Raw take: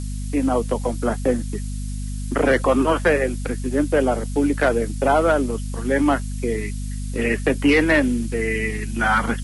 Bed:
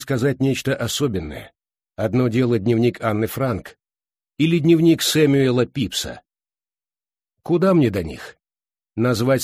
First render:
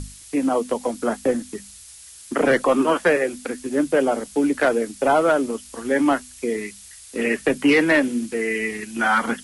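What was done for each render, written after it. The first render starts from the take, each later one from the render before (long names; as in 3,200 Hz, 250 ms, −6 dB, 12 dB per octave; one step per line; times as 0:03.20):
mains-hum notches 50/100/150/200/250 Hz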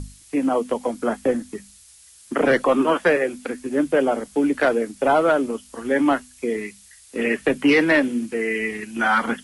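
noise reduction from a noise print 6 dB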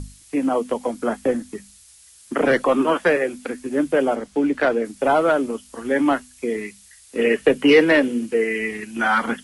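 0:04.15–0:04.85: high-frequency loss of the air 57 metres
0:07.18–0:08.44: hollow resonant body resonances 460/2,900 Hz, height 7 dB, ringing for 20 ms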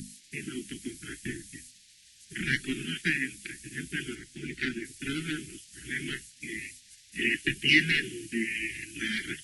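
gate on every frequency bin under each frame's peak −10 dB weak
inverse Chebyshev band-stop filter 500–1,200 Hz, stop band 40 dB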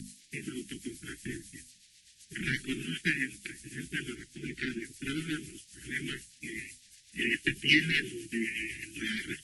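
rotating-speaker cabinet horn 8 Hz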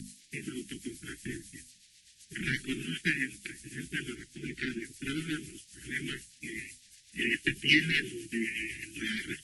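no processing that can be heard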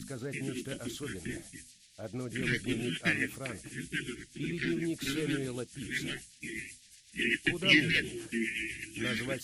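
mix in bed −20.5 dB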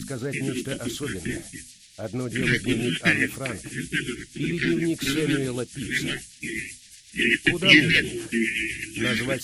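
level +9 dB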